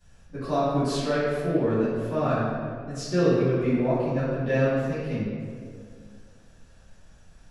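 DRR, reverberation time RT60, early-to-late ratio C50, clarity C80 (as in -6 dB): -17.0 dB, 2.1 s, -2.5 dB, 0.0 dB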